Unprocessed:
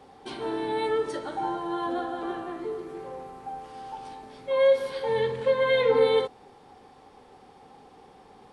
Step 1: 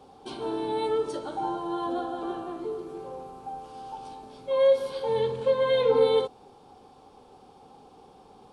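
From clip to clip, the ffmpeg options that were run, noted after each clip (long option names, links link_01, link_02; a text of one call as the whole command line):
ffmpeg -i in.wav -af "equalizer=frequency=1900:width=3:gain=-13.5" out.wav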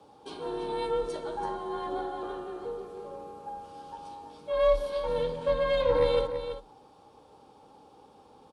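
ffmpeg -i in.wav -af "aeval=exprs='0.316*(cos(1*acos(clip(val(0)/0.316,-1,1)))-cos(1*PI/2))+0.0398*(cos(4*acos(clip(val(0)/0.316,-1,1)))-cos(4*PI/2))':channel_layout=same,afreqshift=34,aecho=1:1:332:0.335,volume=-3.5dB" out.wav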